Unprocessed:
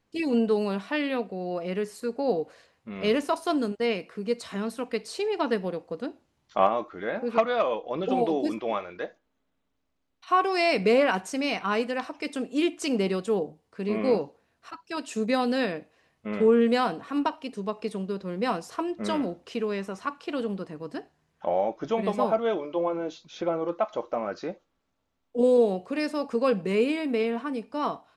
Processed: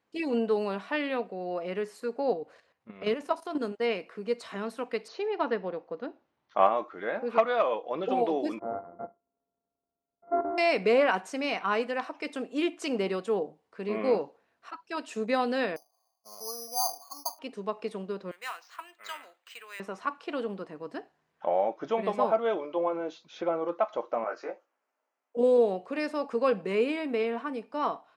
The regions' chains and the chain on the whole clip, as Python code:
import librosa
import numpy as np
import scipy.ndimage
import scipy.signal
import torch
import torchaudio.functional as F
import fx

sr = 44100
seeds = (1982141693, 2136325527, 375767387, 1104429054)

y = fx.chain(x, sr, fx.peak_eq(hz=63.0, db=8.5, octaves=2.8),
    fx.level_steps(step_db=11), at=(2.33, 3.61))
y = fx.chain(y, sr, fx.cheby1_lowpass(hz=6700.0, order=8),
    fx.high_shelf(hz=4900.0, db=-10.0), at=(5.08, 6.6))
y = fx.chain(y, sr, fx.sample_sort(block=64),
    fx.gaussian_blur(sigma=8.9), at=(8.59, 10.58))
y = fx.chain(y, sr, fx.formant_cascade(vowel='a'),
    fx.resample_bad(factor=8, down='filtered', up='zero_stuff'), at=(15.76, 17.39))
y = fx.chain(y, sr, fx.cheby1_highpass(hz=1800.0, order=2),
    fx.resample_bad(factor=4, down='filtered', up='hold'), at=(18.31, 19.8))
y = fx.chain(y, sr, fx.highpass(hz=460.0, slope=12),
    fx.peak_eq(hz=3700.0, db=-12.5, octaves=0.51),
    fx.doubler(ms=18.0, db=-2.5), at=(24.24, 25.37))
y = fx.highpass(y, sr, hz=540.0, slope=6)
y = fx.high_shelf(y, sr, hz=3300.0, db=-11.0)
y = F.gain(torch.from_numpy(y), 2.0).numpy()